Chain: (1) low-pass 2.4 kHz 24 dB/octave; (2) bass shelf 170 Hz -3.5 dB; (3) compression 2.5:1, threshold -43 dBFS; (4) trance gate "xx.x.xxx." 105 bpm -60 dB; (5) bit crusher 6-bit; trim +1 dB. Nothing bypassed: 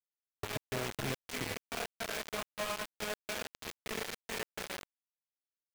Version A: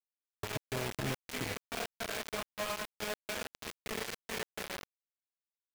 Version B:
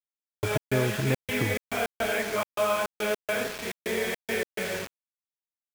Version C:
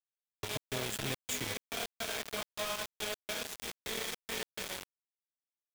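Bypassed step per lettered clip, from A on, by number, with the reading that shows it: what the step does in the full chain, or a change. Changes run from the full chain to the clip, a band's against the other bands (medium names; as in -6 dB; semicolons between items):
2, 125 Hz band +1.5 dB; 3, mean gain reduction 8.5 dB; 1, 8 kHz band +5.0 dB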